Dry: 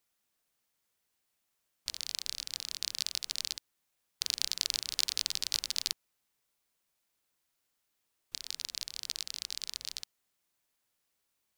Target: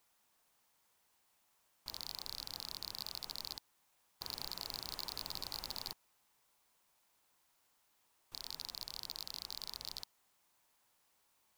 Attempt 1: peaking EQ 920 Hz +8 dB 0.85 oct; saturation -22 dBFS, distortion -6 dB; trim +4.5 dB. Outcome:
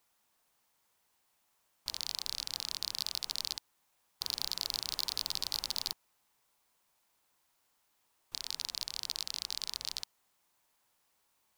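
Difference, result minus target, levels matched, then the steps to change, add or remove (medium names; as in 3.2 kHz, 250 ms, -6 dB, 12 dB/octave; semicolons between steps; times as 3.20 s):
saturation: distortion -5 dB
change: saturation -33 dBFS, distortion -1 dB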